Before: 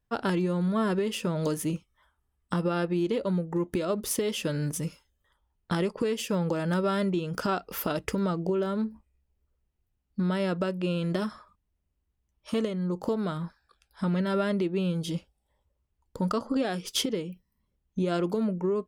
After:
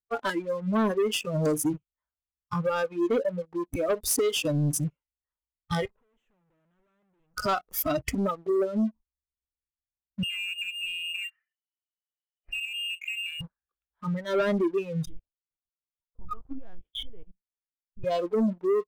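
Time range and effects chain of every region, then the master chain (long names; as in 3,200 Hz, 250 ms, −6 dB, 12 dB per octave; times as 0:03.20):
0:05.85–0:07.36: parametric band 1,400 Hz +3 dB 1.4 octaves + tube saturation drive 44 dB, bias 0.55
0:10.23–0:13.41: downward compressor 3 to 1, threshold −39 dBFS + voice inversion scrambler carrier 3,000 Hz
0:15.05–0:18.04: high-shelf EQ 2,400 Hz −3 dB + output level in coarse steps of 18 dB + linear-prediction vocoder at 8 kHz pitch kept
whole clip: adaptive Wiener filter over 9 samples; noise reduction from a noise print of the clip's start 23 dB; leveller curve on the samples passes 2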